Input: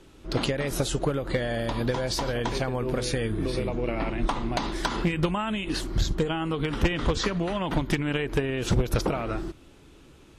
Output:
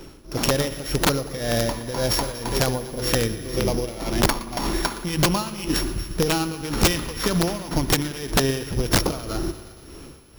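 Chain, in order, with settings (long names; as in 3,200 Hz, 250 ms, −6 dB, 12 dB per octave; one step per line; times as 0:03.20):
samples sorted by size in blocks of 8 samples
time-frequency box erased 0:02.74–0:02.99, 1,100–9,400 Hz
in parallel at +0.5 dB: downward compressor 12 to 1, threshold −38 dBFS, peak gain reduction 19.5 dB
on the sum: amplitude tremolo 1.9 Hz, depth 84%
on a send: feedback echo with a high-pass in the loop 118 ms, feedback 75%, high-pass 790 Hz, level −14.5 dB
on the sum: spring reverb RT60 2.4 s, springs 59 ms, chirp 75 ms, DRR 13 dB
wrap-around overflow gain 17 dB
level +5.5 dB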